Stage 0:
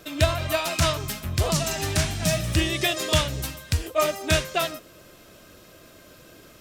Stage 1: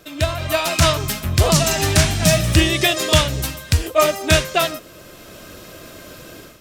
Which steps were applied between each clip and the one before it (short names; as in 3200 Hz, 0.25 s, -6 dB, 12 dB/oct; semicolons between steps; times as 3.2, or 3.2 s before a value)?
AGC gain up to 11 dB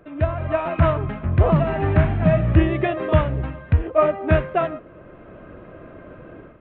Gaussian blur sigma 4.9 samples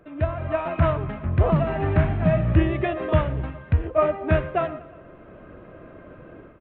feedback echo 0.119 s, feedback 58%, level -19 dB; gain -3 dB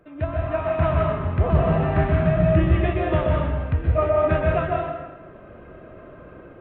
plate-style reverb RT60 1.1 s, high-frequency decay 0.8×, pre-delay 0.115 s, DRR -1.5 dB; gain -2.5 dB